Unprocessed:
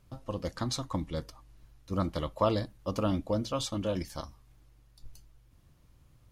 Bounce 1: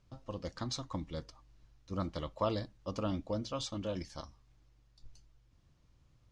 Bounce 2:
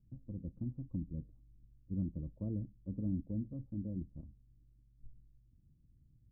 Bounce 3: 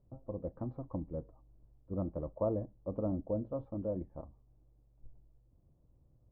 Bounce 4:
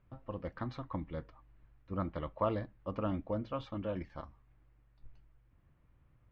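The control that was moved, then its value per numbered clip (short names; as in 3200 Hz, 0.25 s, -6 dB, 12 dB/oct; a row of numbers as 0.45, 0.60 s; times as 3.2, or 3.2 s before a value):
ladder low-pass, frequency: 7800, 300, 800, 2700 Hz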